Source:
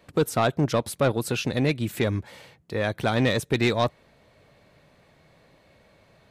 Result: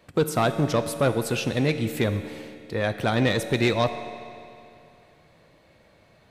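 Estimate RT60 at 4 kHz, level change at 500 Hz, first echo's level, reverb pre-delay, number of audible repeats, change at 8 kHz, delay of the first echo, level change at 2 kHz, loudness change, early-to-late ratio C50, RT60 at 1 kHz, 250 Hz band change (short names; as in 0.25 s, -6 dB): 2.3 s, +0.5 dB, none, 5 ms, none, +0.5 dB, none, +0.5 dB, +0.5 dB, 10.0 dB, 2.6 s, +0.5 dB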